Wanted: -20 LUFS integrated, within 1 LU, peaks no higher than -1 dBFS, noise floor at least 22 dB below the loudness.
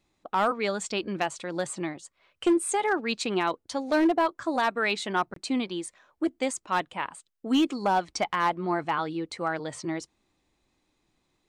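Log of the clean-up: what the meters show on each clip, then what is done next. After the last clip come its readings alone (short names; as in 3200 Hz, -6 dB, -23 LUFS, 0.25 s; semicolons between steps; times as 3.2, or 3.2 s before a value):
clipped 0.5%; flat tops at -17.0 dBFS; dropouts 1; longest dropout 23 ms; loudness -28.0 LUFS; peak -17.0 dBFS; loudness target -20.0 LUFS
-> clip repair -17 dBFS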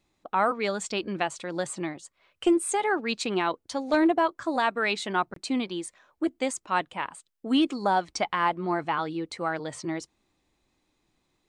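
clipped 0.0%; dropouts 1; longest dropout 23 ms
-> interpolate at 5.34, 23 ms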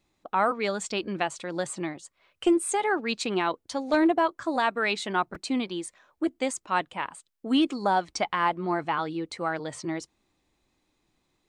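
dropouts 0; loudness -28.0 LUFS; peak -11.5 dBFS; loudness target -20.0 LUFS
-> gain +8 dB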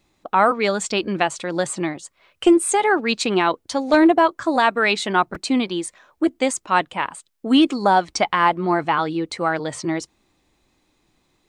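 loudness -20.0 LUFS; peak -3.5 dBFS; noise floor -67 dBFS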